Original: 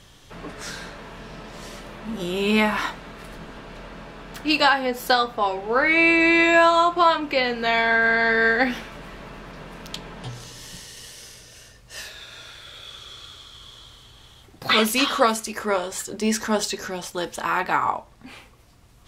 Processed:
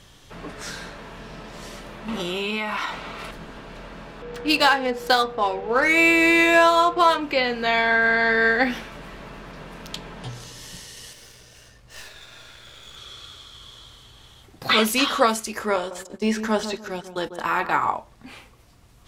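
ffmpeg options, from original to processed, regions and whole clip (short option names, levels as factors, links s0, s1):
-filter_complex "[0:a]asettb=1/sr,asplit=3[s0][s1][s2];[s0]atrim=end=2.084[s3];[s1]atrim=start=2.08:end=3.31,asetpts=PTS-STARTPTS,afade=t=in:d=0.004:c=qsin,afade=t=out:st=1.226:d=0.004:c=qsin,equalizer=f=2000:w=0.32:g=9,bandreject=f=1700:w=6.1,acompressor=threshold=0.0708:ratio=8:attack=3.2:release=140:knee=1:detection=peak[s4];[s2]atrim=start=3.306[s5];[s3][s4]acrossfade=d=0.004:c1=hsin:c2=qsin[s6];[s6][s5]acrossfade=d=0.004:c1=qsin:c2=hsin,asettb=1/sr,asplit=3[s7][s8][s9];[s7]atrim=end=4.224[s10];[s8]atrim=start=4.22:end=7.19,asetpts=PTS-STARTPTS,afade=t=in:d=0.004:c=qsin,afade=t=out:st=2.966:d=0.004:c=qsin,highshelf=f=9200:g=10.5,adynamicsmooth=sensitivity=3.5:basefreq=3600,aeval=exprs='val(0)+0.02*sin(2*PI*480*n/s)':c=same[s11];[s9]atrim=start=7.186[s12];[s10][s11]acrossfade=d=0.004:c1=hsin:c2=qsin[s13];[s13][s12]acrossfade=d=0.004:c1=qsin:c2=hsin,asettb=1/sr,asplit=3[s14][s15][s16];[s14]atrim=end=11.134[s17];[s15]atrim=start=11.13:end=12.97,asetpts=PTS-STARTPTS,afade=t=in:d=0.004:c=qsin,afade=t=out:st=1.836:d=0.004:c=qsin,highshelf=f=4700:g=-5.5,aeval=exprs='clip(val(0),-1,0.00355)':c=same,asplit=2[s18][s19];[s19]adelay=15,volume=0.282[s20];[s18][s20]amix=inputs=2:normalize=0,atrim=end_sample=81144[s21];[s16]atrim=start=12.966[s22];[s17][s21]acrossfade=d=0.004:c1=hsin:c2=qsin[s23];[s23][s22]acrossfade=d=0.004:c1=qsin:c2=hsin,asettb=1/sr,asplit=3[s24][s25][s26];[s24]atrim=end=15.764[s27];[s25]atrim=start=15.76:end=17.86,asetpts=PTS-STARTPTS,afade=t=in:d=0.004:c=qsin,afade=t=out:st=2.096:d=0.004:c=qsin,agate=range=0.0891:threshold=0.0224:ratio=16:release=100:detection=peak,acrossover=split=3900[s28][s29];[s29]acompressor=threshold=0.0126:ratio=4:attack=1:release=60[s30];[s28][s30]amix=inputs=2:normalize=0,asplit=2[s31][s32];[s32]adelay=146,lowpass=f=970:p=1,volume=0.355,asplit=2[s33][s34];[s34]adelay=146,lowpass=f=970:p=1,volume=0.32,asplit=2[s35][s36];[s36]adelay=146,lowpass=f=970:p=1,volume=0.32,asplit=2[s37][s38];[s38]adelay=146,lowpass=f=970:p=1,volume=0.32[s39];[s31][s33][s35][s37][s39]amix=inputs=5:normalize=0,atrim=end_sample=92610[s40];[s26]atrim=start=17.856[s41];[s27][s40]acrossfade=d=0.004:c1=hsin:c2=qsin[s42];[s42][s41]acrossfade=d=0.004:c1=qsin:c2=hsin"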